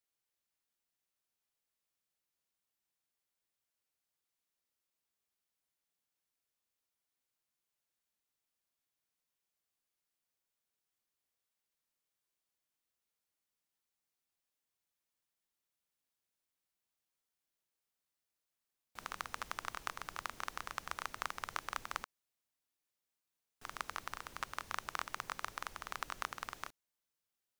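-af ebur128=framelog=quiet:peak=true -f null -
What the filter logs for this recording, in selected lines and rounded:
Integrated loudness:
  I:         -43.8 LUFS
  Threshold: -53.9 LUFS
Loudness range:
  LRA:         5.9 LU
  Threshold: -65.4 LUFS
  LRA low:   -49.4 LUFS
  LRA high:  -43.4 LUFS
True peak:
  Peak:      -15.5 dBFS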